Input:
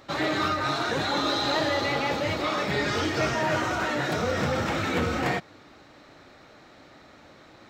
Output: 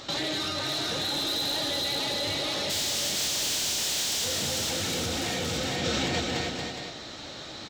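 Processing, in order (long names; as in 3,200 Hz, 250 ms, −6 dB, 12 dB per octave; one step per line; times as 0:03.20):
0:02.69–0:04.24: compressing power law on the bin magnitudes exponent 0.25
flat-topped bell 4,900 Hz +10.5 dB
on a send: bouncing-ball delay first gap 450 ms, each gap 0.8×, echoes 5
on the sum: soft clipping −19.5 dBFS, distortion −11 dB
in parallel at +2 dB: compressor whose output falls as the input rises −32 dBFS, ratio −0.5
on the sum: dynamic equaliser 1,200 Hz, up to −7 dB, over −42 dBFS, Q 2.2
level −6.5 dB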